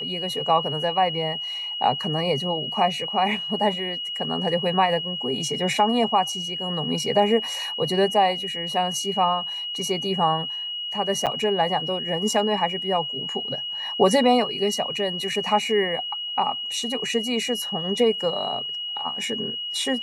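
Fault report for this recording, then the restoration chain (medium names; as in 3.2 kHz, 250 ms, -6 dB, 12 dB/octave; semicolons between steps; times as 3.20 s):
whine 2.9 kHz -28 dBFS
11.26–11.27 s: dropout 7.8 ms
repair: band-stop 2.9 kHz, Q 30; interpolate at 11.26 s, 7.8 ms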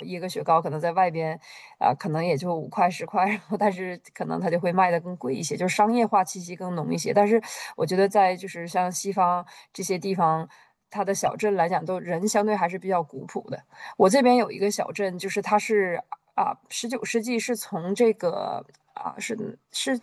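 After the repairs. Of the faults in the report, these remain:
nothing left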